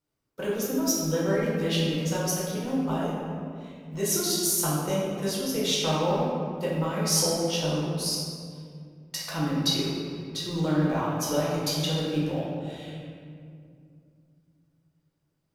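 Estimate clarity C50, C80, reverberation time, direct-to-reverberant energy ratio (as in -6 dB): -1.0 dB, 1.0 dB, 2.3 s, -6.5 dB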